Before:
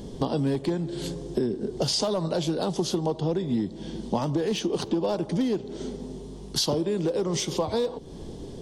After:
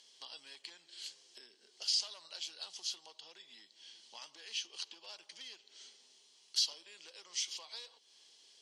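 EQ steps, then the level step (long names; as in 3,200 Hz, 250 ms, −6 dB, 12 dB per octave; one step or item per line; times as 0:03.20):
four-pole ladder band-pass 4,200 Hz, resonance 20%
notch filter 3,600 Hz, Q 8.7
+6.5 dB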